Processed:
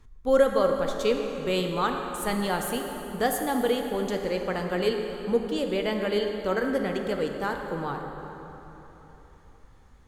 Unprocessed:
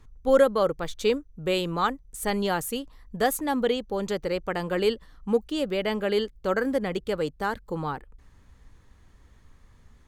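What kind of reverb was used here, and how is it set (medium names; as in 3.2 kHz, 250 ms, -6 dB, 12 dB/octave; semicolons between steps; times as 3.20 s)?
plate-style reverb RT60 3.7 s, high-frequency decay 0.65×, DRR 3 dB; trim -2 dB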